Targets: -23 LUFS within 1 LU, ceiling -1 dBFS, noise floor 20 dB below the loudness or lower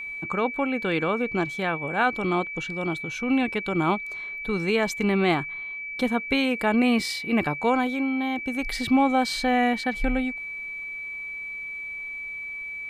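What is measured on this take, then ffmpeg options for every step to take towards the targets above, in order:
steady tone 2300 Hz; tone level -32 dBFS; loudness -25.5 LUFS; peak -11.0 dBFS; loudness target -23.0 LUFS
-> -af "bandreject=f=2.3k:w=30"
-af "volume=2.5dB"

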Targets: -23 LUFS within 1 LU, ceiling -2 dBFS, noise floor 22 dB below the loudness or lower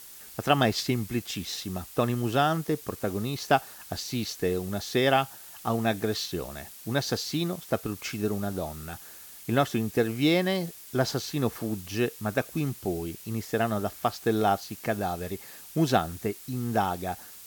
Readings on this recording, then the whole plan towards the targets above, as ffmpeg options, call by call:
noise floor -47 dBFS; noise floor target -51 dBFS; loudness -28.5 LUFS; peak -8.0 dBFS; loudness target -23.0 LUFS
-> -af "afftdn=nr=6:nf=-47"
-af "volume=5.5dB"

